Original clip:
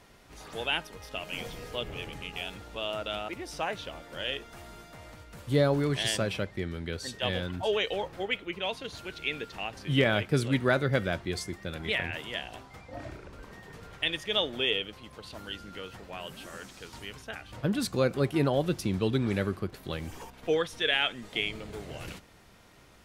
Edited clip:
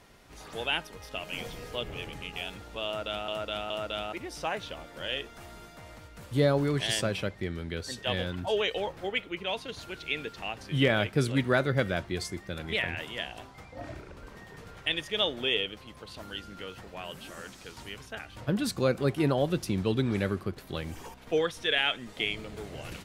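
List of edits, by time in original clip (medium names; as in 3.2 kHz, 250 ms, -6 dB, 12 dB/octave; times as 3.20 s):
2.86–3.28 s: loop, 3 plays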